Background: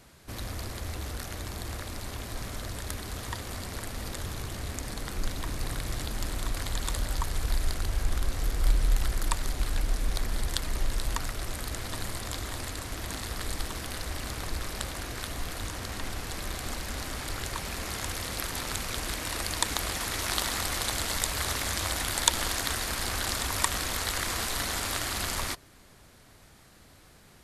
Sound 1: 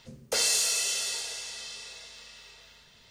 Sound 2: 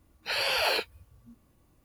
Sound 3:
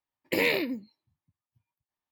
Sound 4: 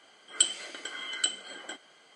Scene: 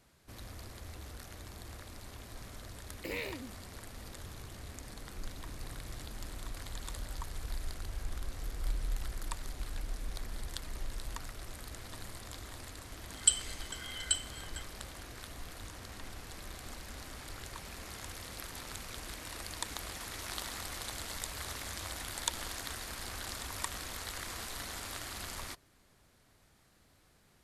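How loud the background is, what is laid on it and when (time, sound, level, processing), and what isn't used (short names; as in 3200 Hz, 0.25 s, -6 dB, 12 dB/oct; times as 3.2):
background -11 dB
2.72 add 3 -14 dB
12.87 add 4 -11 dB + tilt +3.5 dB/oct
not used: 1, 2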